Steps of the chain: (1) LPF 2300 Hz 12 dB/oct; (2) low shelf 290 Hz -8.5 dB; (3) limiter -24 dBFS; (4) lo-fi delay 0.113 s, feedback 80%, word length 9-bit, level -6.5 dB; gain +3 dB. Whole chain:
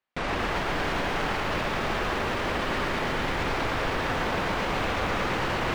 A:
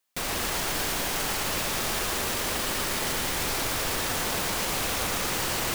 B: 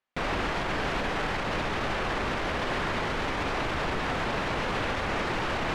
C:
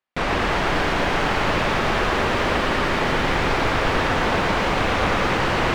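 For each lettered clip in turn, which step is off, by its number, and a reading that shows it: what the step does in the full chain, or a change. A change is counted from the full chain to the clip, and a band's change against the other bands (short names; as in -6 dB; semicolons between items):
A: 1, 8 kHz band +20.5 dB; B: 4, crest factor change -3.5 dB; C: 3, mean gain reduction 7.0 dB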